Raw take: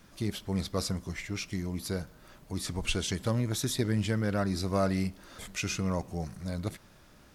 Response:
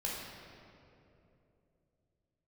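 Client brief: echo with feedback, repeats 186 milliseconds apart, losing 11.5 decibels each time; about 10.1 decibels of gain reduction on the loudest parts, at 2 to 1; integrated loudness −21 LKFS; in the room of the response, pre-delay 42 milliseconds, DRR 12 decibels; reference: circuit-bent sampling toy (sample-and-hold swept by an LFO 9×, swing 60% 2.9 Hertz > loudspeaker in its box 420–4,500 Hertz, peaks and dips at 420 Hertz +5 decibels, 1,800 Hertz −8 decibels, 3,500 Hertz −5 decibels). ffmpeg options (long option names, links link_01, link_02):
-filter_complex "[0:a]acompressor=threshold=-43dB:ratio=2,aecho=1:1:186|372|558:0.266|0.0718|0.0194,asplit=2[link_01][link_02];[1:a]atrim=start_sample=2205,adelay=42[link_03];[link_02][link_03]afir=irnorm=-1:irlink=0,volume=-15dB[link_04];[link_01][link_04]amix=inputs=2:normalize=0,acrusher=samples=9:mix=1:aa=0.000001:lfo=1:lforange=5.4:lforate=2.9,highpass=420,equalizer=frequency=420:width_type=q:width=4:gain=5,equalizer=frequency=1800:width_type=q:width=4:gain=-8,equalizer=frequency=3500:width_type=q:width=4:gain=-5,lowpass=frequency=4500:width=0.5412,lowpass=frequency=4500:width=1.3066,volume=25dB"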